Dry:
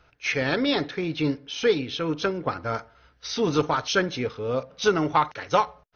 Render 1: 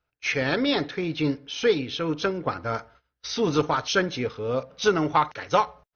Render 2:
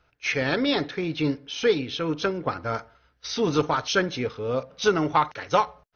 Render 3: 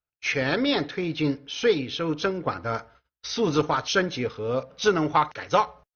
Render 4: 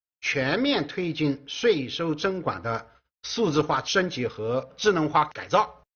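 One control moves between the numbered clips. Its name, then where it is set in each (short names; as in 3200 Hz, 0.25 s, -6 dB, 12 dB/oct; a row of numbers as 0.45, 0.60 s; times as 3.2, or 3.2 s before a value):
gate, range: -21, -6, -35, -49 dB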